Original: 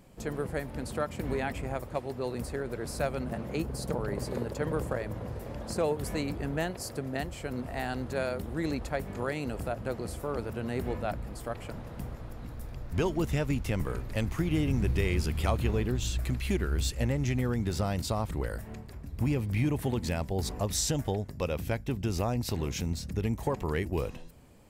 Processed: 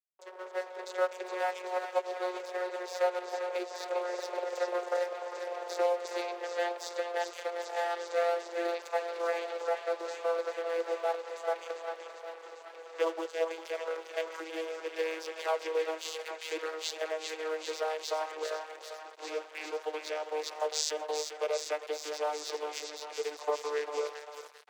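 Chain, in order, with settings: vocoder on a note that slides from F#3, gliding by -4 st; in parallel at +1 dB: compression 4:1, threshold -39 dBFS, peak gain reduction 15.5 dB; on the sum: dynamic bell 4.9 kHz, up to +6 dB, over -59 dBFS, Q 0.8; level rider gain up to 10.5 dB; on a send: thinning echo 398 ms, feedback 79%, high-pass 590 Hz, level -7 dB; on the sum: crossover distortion -37 dBFS; steep high-pass 430 Hz 48 dB/octave; trim -5.5 dB

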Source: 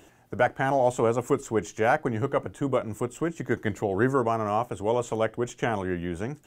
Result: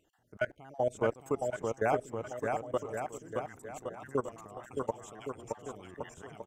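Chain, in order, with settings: random holes in the spectrogram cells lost 33%; level held to a coarse grid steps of 23 dB; bouncing-ball echo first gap 620 ms, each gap 0.8×, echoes 5; trim -4.5 dB

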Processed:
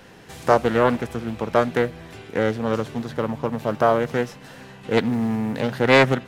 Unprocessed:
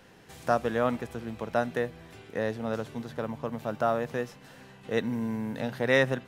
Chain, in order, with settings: loudspeaker Doppler distortion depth 0.38 ms; trim +8.5 dB

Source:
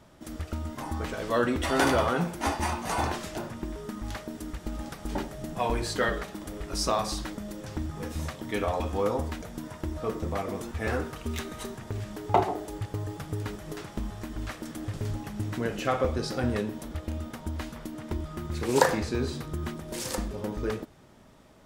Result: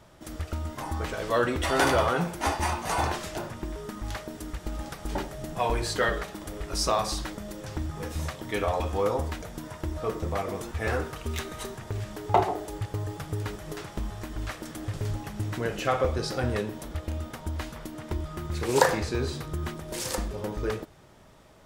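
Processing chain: peaking EQ 240 Hz -6.5 dB 0.68 oct; in parallel at -11 dB: saturation -19.5 dBFS, distortion -14 dB

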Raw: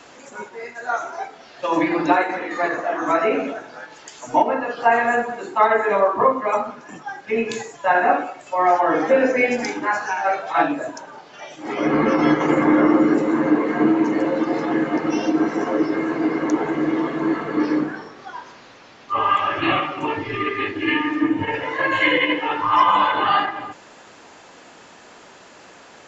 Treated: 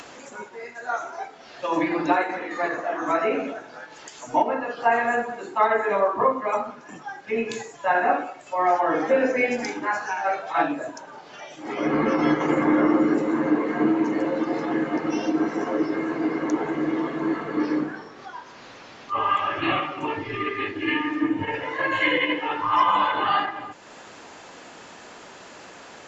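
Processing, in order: upward compressor, threshold -32 dBFS; trim -4 dB

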